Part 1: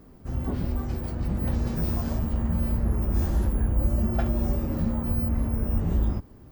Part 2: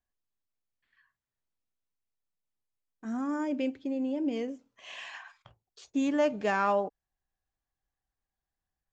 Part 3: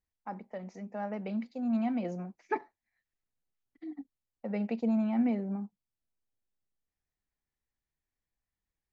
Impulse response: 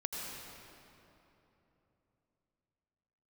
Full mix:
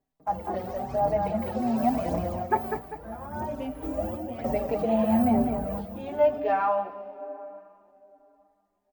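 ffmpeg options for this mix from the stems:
-filter_complex "[0:a]aphaser=in_gain=1:out_gain=1:delay=2.8:decay=0.72:speed=0.93:type=triangular,highpass=140,volume=-5dB,asplit=2[a][b];[b]volume=-8dB[c];[1:a]lowpass=f=4.3k:w=0.5412,lowpass=f=4.3k:w=1.3066,flanger=delay=16.5:depth=6.1:speed=0.47,volume=-3.5dB,asplit=2[d][e];[e]volume=-9dB[f];[2:a]volume=3dB,asplit=3[g][h][i];[h]volume=-4.5dB[j];[i]apad=whole_len=287369[k];[a][k]sidechaingate=range=-33dB:threshold=-55dB:ratio=16:detection=peak[l];[3:a]atrim=start_sample=2205[m];[f][m]afir=irnorm=-1:irlink=0[n];[c][j]amix=inputs=2:normalize=0,aecho=0:1:198|396|594|792|990:1|0.36|0.13|0.0467|0.0168[o];[l][d][g][n][o]amix=inputs=5:normalize=0,equalizer=f=710:w=1.7:g=14,asplit=2[p][q];[q]adelay=4.8,afreqshift=1.1[r];[p][r]amix=inputs=2:normalize=1"

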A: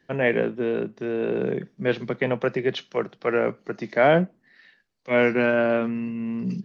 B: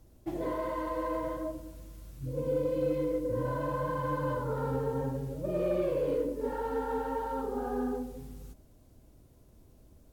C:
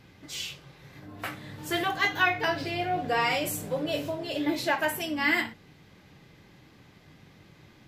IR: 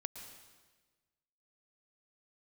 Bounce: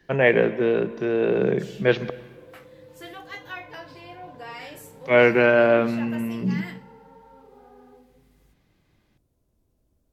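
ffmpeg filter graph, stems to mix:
-filter_complex "[0:a]equalizer=f=250:t=o:w=0.27:g=-7,volume=1.5dB,asplit=3[a][b][c];[a]atrim=end=2.1,asetpts=PTS-STARTPTS,afade=t=out:st=2.096:d=0.004:c=hsin[d];[b]atrim=start=2.1:end=4.59,asetpts=PTS-STARTPTS,volume=0[e];[c]atrim=start=4.59,asetpts=PTS-STARTPTS,afade=t=in:d=0.004:c=hsin[f];[d][e][f]concat=n=3:v=0:a=1,asplit=3[g][h][i];[h]volume=-5dB[j];[1:a]acrossover=split=430|1600[k][l][m];[k]acompressor=threshold=-46dB:ratio=4[n];[l]acompressor=threshold=-38dB:ratio=4[o];[m]acompressor=threshold=-57dB:ratio=4[p];[n][o][p]amix=inputs=3:normalize=0,adynamicequalizer=threshold=0.00178:dfrequency=1600:dqfactor=0.7:tfrequency=1600:tqfactor=0.7:attack=5:release=100:ratio=0.375:range=1.5:mode=cutabove:tftype=highshelf,volume=-11.5dB[q];[2:a]adelay=1300,volume=-14dB,asplit=2[r][s];[s]volume=-14dB[t];[i]apad=whole_len=446564[u];[q][u]sidechaincompress=threshold=-30dB:ratio=8:attack=16:release=102[v];[3:a]atrim=start_sample=2205[w];[j][t]amix=inputs=2:normalize=0[x];[x][w]afir=irnorm=-1:irlink=0[y];[g][v][r][y]amix=inputs=4:normalize=0"

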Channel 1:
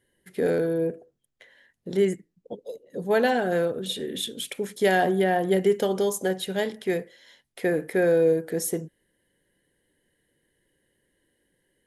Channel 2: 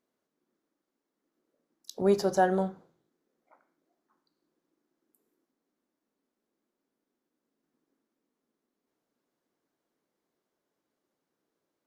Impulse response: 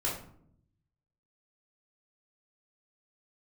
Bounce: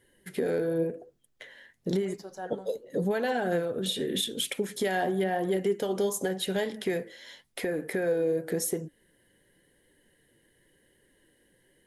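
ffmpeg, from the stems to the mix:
-filter_complex "[0:a]acompressor=threshold=-31dB:ratio=3,volume=3dB[a];[1:a]tiltshelf=f=970:g=-3,volume=-17dB[b];[a][b]amix=inputs=2:normalize=0,acontrast=80,flanger=delay=1.8:depth=8.1:regen=70:speed=0.91:shape=triangular,alimiter=limit=-18.5dB:level=0:latency=1:release=326"

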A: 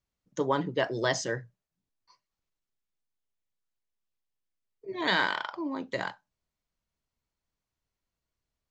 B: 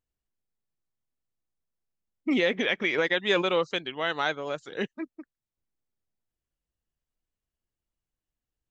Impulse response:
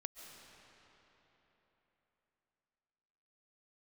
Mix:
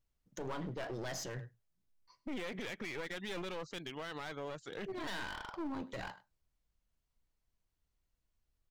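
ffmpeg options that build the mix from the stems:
-filter_complex "[0:a]asoftclip=type=tanh:threshold=-21.5dB,volume=-3.5dB,asplit=2[a][b];[b]volume=-22dB[c];[1:a]asoftclip=type=tanh:threshold=-18dB,volume=-4dB[d];[c]aecho=0:1:103:1[e];[a][d][e]amix=inputs=3:normalize=0,lowshelf=f=77:g=11,aeval=exprs='clip(val(0),-1,0.00944)':c=same,alimiter=level_in=8dB:limit=-24dB:level=0:latency=1:release=40,volume=-8dB"

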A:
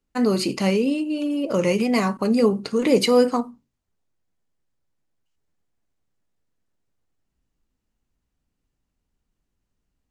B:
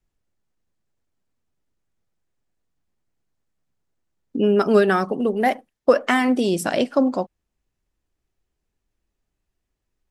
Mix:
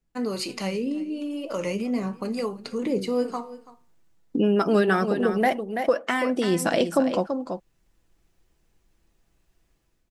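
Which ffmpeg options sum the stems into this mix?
-filter_complex "[0:a]flanger=delay=5.5:depth=8.7:regen=81:speed=0.42:shape=sinusoidal,acrossover=split=520[a][b];[a]aeval=exprs='val(0)*(1-0.7/2+0.7/2*cos(2*PI*1*n/s))':c=same[c];[b]aeval=exprs='val(0)*(1-0.7/2-0.7/2*cos(2*PI*1*n/s))':c=same[d];[c][d]amix=inputs=2:normalize=0,volume=2dB,asplit=2[e][f];[f]volume=-21dB[g];[1:a]aecho=1:1:6:0.31,dynaudnorm=f=150:g=5:m=13dB,volume=-3dB,asplit=2[h][i];[i]volume=-10dB[j];[g][j]amix=inputs=2:normalize=0,aecho=0:1:333:1[k];[e][h][k]amix=inputs=3:normalize=0,acompressor=threshold=-27dB:ratio=1.5"

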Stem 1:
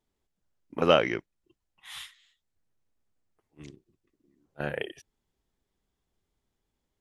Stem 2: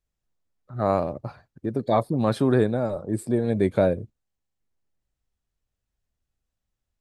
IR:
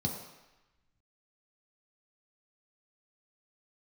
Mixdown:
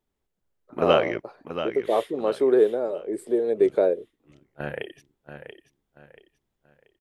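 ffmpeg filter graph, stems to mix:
-filter_complex "[0:a]equalizer=f=5.9k:t=o:w=1.4:g=-6,volume=0.5dB,asplit=2[a][b];[b]volume=-9.5dB[c];[1:a]highpass=f=410:t=q:w=4.2,volume=-6dB[d];[c]aecho=0:1:683|1366|2049|2732|3415:1|0.33|0.109|0.0359|0.0119[e];[a][d][e]amix=inputs=3:normalize=0"

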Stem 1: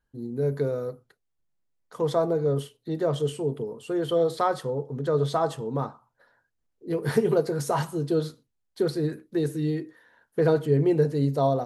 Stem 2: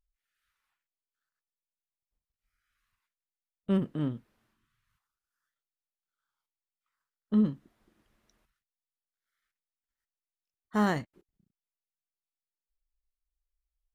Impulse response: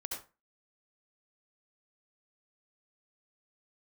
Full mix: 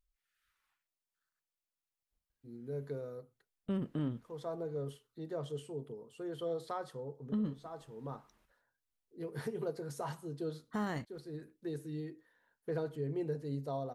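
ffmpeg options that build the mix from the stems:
-filter_complex "[0:a]adelay=2300,volume=-14.5dB[a];[1:a]alimiter=limit=-20dB:level=0:latency=1,volume=0dB,asplit=2[b][c];[c]apad=whole_len=615578[d];[a][d]sidechaincompress=threshold=-37dB:ratio=8:attack=16:release=650[e];[e][b]amix=inputs=2:normalize=0,alimiter=level_in=3.5dB:limit=-24dB:level=0:latency=1:release=210,volume=-3.5dB"

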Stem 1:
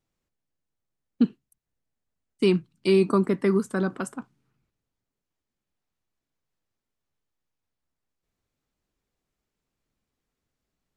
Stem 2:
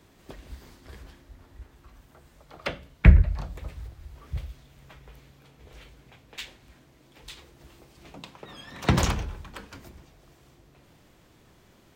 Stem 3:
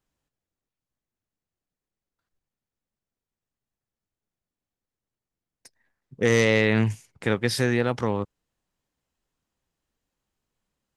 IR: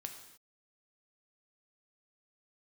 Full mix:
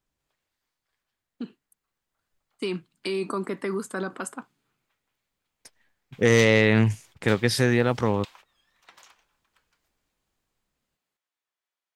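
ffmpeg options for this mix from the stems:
-filter_complex "[0:a]bandreject=f=5.7k:w=8.7,alimiter=limit=-18.5dB:level=0:latency=1:release=51,highpass=f=560:p=1,adelay=200,volume=-0.5dB[a];[1:a]highpass=1k,volume=-2.5dB[b];[2:a]lowshelf=f=67:g=3.5,volume=-2.5dB,asplit=2[c][d];[d]apad=whole_len=527327[e];[b][e]sidechaingate=range=-25dB:threshold=-52dB:ratio=16:detection=peak[f];[a][f][c]amix=inputs=3:normalize=0,dynaudnorm=f=430:g=9:m=4.5dB"

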